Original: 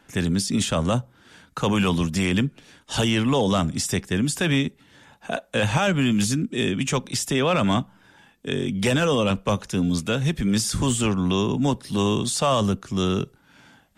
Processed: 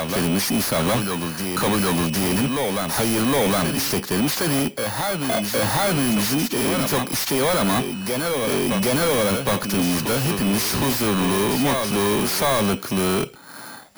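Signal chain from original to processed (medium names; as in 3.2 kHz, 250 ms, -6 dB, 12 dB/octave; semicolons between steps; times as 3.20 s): bit-reversed sample order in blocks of 16 samples; reverse echo 764 ms -11.5 dB; overdrive pedal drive 28 dB, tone 4.9 kHz, clips at -10 dBFS; trim -2 dB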